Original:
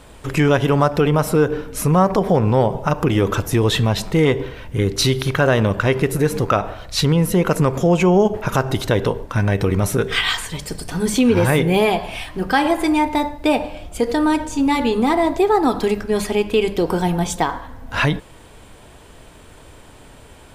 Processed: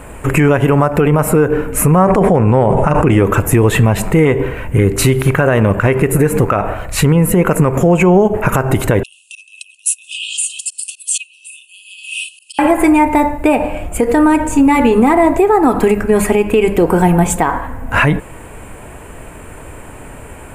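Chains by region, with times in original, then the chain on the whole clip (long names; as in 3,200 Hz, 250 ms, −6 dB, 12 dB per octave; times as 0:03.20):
0:02.03–0:03.23: Butterworth low-pass 11,000 Hz + level that may fall only so fast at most 30 dB per second
0:09.03–0:12.59: volume swells 113 ms + compressor whose output falls as the input rises −24 dBFS + linear-phase brick-wall band-pass 2,500–11,000 Hz
whole clip: flat-topped bell 4,400 Hz −15 dB 1.1 octaves; downward compressor, threshold −17 dBFS; boost into a limiter +12 dB; level −1 dB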